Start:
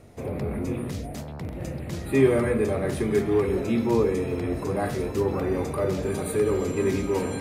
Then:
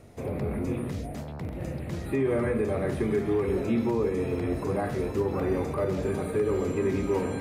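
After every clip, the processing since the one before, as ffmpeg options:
-filter_complex "[0:a]acrossover=split=2600[a][b];[b]acompressor=threshold=-48dB:ratio=4:attack=1:release=60[c];[a][c]amix=inputs=2:normalize=0,alimiter=limit=-16.5dB:level=0:latency=1:release=131,volume=-1dB"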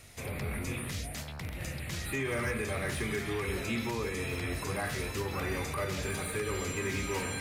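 -filter_complex "[0:a]equalizer=f=340:w=0.44:g=-10.5,acrossover=split=1600[a][b];[b]aeval=exprs='0.0211*sin(PI/2*2.24*val(0)/0.0211)':c=same[c];[a][c]amix=inputs=2:normalize=0"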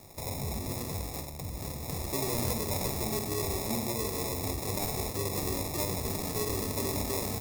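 -filter_complex "[0:a]acrossover=split=350[a][b];[b]acrusher=samples=29:mix=1:aa=0.000001[c];[a][c]amix=inputs=2:normalize=0,aexciter=amount=4.3:drive=3.4:freq=4.4k,asplit=2[d][e];[e]adelay=50,volume=-11dB[f];[d][f]amix=inputs=2:normalize=0"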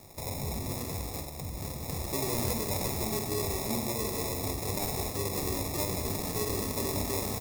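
-af "aecho=1:1:187:0.299"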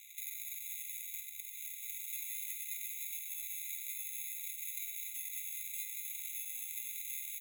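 -filter_complex "[0:a]bandreject=f=7.2k:w=25,acrossover=split=1500|7500[a][b][c];[a]acompressor=threshold=-33dB:ratio=4[d];[b]acompressor=threshold=-54dB:ratio=4[e];[c]acompressor=threshold=-39dB:ratio=4[f];[d][e][f]amix=inputs=3:normalize=0,afftfilt=real='re*eq(mod(floor(b*sr/1024/2000),2),1)':imag='im*eq(mod(floor(b*sr/1024/2000),2),1)':win_size=1024:overlap=0.75,volume=5dB"

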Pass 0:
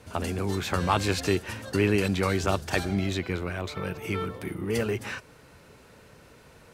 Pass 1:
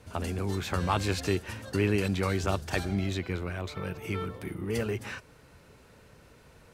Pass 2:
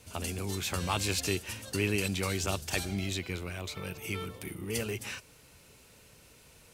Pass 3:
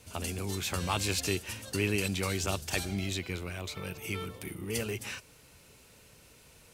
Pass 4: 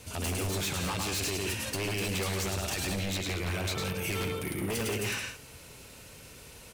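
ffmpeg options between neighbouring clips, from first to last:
-af "lowshelf=f=92:g=6.5,volume=-4dB"
-af "aexciter=amount=1.6:drive=8.9:freq=2.3k,volume=-4.5dB"
-af anull
-af "aecho=1:1:105|172:0.562|0.282,alimiter=level_in=2dB:limit=-24dB:level=0:latency=1:release=122,volume=-2dB,aeval=exprs='0.0237*(abs(mod(val(0)/0.0237+3,4)-2)-1)':c=same,volume=6.5dB"

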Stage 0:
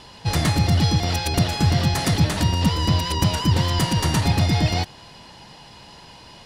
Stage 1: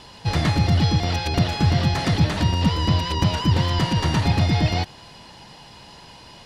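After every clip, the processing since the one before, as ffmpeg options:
-filter_complex "[0:a]acrossover=split=5200[a][b];[b]acompressor=threshold=-46dB:ratio=4:attack=1:release=60[c];[a][c]amix=inputs=2:normalize=0"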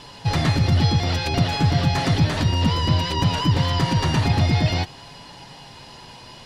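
-filter_complex "[0:a]asplit=2[a][b];[b]alimiter=limit=-16dB:level=0:latency=1,volume=0dB[c];[a][c]amix=inputs=2:normalize=0,flanger=delay=6.9:depth=1.3:regen=-39:speed=0.57:shape=triangular"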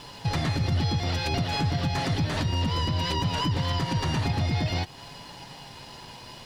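-af "alimiter=limit=-17.5dB:level=0:latency=1:release=226,aeval=exprs='sgn(val(0))*max(abs(val(0))-0.00178,0)':c=same"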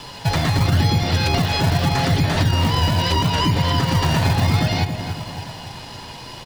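-filter_complex "[0:a]asplit=2[a][b];[b]adelay=280,lowpass=f=2k:p=1,volume=-7dB,asplit=2[c][d];[d]adelay=280,lowpass=f=2k:p=1,volume=0.53,asplit=2[e][f];[f]adelay=280,lowpass=f=2k:p=1,volume=0.53,asplit=2[g][h];[h]adelay=280,lowpass=f=2k:p=1,volume=0.53,asplit=2[i][j];[j]adelay=280,lowpass=f=2k:p=1,volume=0.53,asplit=2[k][l];[l]adelay=280,lowpass=f=2k:p=1,volume=0.53[m];[a][c][e][g][i][k][m]amix=inputs=7:normalize=0,acrossover=split=270|890[n][o][p];[n]acrusher=samples=37:mix=1:aa=0.000001:lfo=1:lforange=37:lforate=0.77[q];[q][o][p]amix=inputs=3:normalize=0,volume=7.5dB"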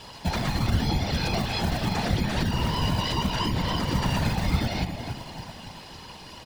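-af "afftfilt=real='hypot(re,im)*cos(2*PI*random(0))':imag='hypot(re,im)*sin(2*PI*random(1))':win_size=512:overlap=0.75,volume=-1.5dB"

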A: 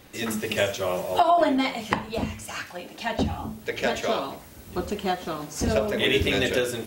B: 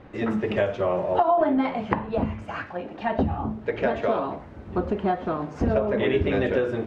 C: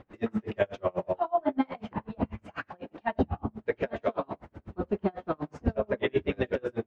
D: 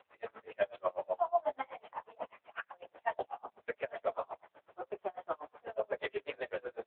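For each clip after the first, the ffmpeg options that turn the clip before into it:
-af "lowpass=1.4k,acompressor=threshold=-27dB:ratio=2,volume=5.5dB"
-af "aeval=exprs='val(0)*pow(10,-36*(0.5-0.5*cos(2*PI*8.1*n/s))/20)':c=same"
-af "highpass=f=520:w=0.5412,highpass=f=520:w=1.3066,volume=-2dB" -ar 8000 -c:a libopencore_amrnb -b:a 6700

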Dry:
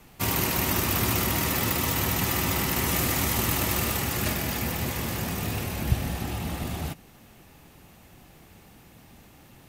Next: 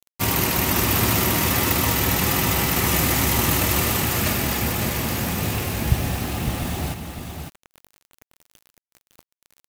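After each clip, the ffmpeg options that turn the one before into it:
-af "acrusher=bits=6:mix=0:aa=0.000001,aecho=1:1:557:0.473,volume=4.5dB"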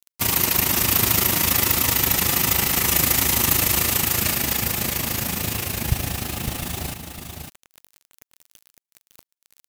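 -af "tremolo=f=27:d=0.667,highshelf=f=2.4k:g=8.5,volume=-1.5dB"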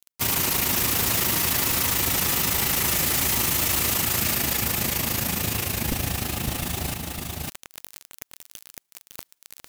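-af "areverse,acompressor=mode=upward:threshold=-25dB:ratio=2.5,areverse,aeval=exprs='0.141*(abs(mod(val(0)/0.141+3,4)-2)-1)':c=same"

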